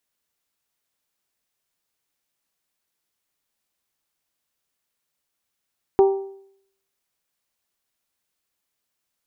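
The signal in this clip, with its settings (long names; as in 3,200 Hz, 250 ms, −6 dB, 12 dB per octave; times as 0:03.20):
struck metal bell, lowest mode 390 Hz, modes 4, decay 0.67 s, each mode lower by 9.5 dB, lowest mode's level −9 dB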